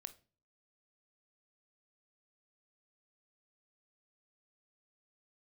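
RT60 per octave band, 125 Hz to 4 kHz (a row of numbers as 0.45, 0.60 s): 0.60, 0.55, 0.40, 0.35, 0.30, 0.30 s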